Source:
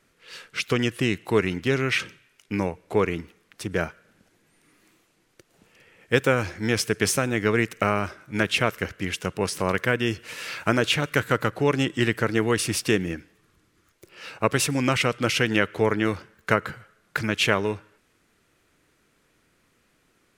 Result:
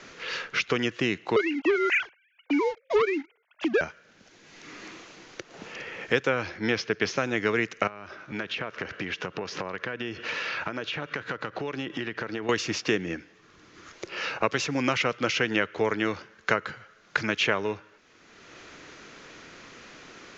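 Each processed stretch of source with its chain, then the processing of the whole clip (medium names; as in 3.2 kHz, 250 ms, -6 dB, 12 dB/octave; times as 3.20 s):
1.36–3.81 s: formants replaced by sine waves + waveshaping leveller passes 2
6.29–7.17 s: low-pass 5.2 kHz 24 dB/octave + tape noise reduction on one side only decoder only
7.87–12.49 s: low-pass 4.4 kHz + band-stop 2.1 kHz, Q 21 + compression, threshold -35 dBFS
whole clip: steep low-pass 6.9 kHz 96 dB/octave; bass shelf 170 Hz -12 dB; three bands compressed up and down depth 70%; trim -1 dB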